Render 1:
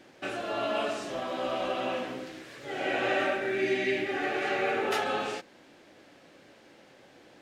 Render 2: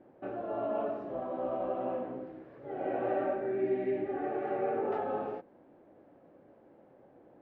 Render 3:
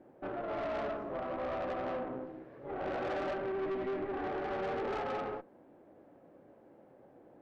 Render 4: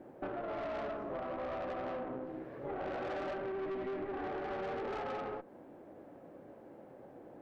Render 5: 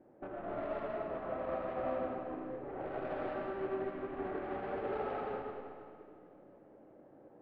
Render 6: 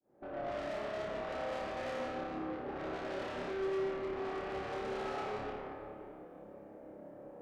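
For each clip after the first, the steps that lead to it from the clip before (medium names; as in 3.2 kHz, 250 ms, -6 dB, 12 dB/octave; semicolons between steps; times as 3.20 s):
Chebyshev low-pass 720 Hz, order 2; trim -1.5 dB
dynamic bell 1.3 kHz, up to +7 dB, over -56 dBFS, Q 2.5; valve stage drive 35 dB, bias 0.55; trim +2.5 dB
compression 5:1, threshold -43 dBFS, peak gain reduction 9 dB; trim +5.5 dB
distance through air 340 m; algorithmic reverb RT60 2.8 s, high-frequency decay 0.95×, pre-delay 45 ms, DRR -2 dB; upward expansion 1.5:1, over -48 dBFS; trim -1 dB
fade-in on the opening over 0.53 s; valve stage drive 45 dB, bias 0.3; on a send: flutter echo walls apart 4.9 m, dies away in 0.58 s; on the sum: trim +5 dB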